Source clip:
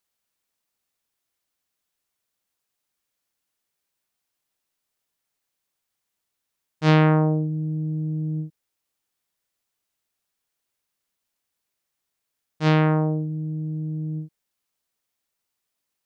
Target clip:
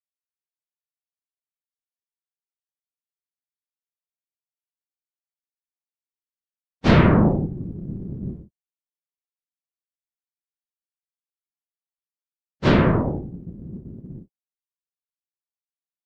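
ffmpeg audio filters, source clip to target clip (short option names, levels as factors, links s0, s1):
-af "bandreject=f=194.4:t=h:w=4,bandreject=f=388.8:t=h:w=4,bandreject=f=583.2:t=h:w=4,bandreject=f=777.6:t=h:w=4,afftfilt=real='hypot(re,im)*cos(2*PI*random(0))':imag='hypot(re,im)*sin(2*PI*random(1))':win_size=512:overlap=0.75,agate=range=0.0224:threshold=0.0562:ratio=3:detection=peak,volume=2.66"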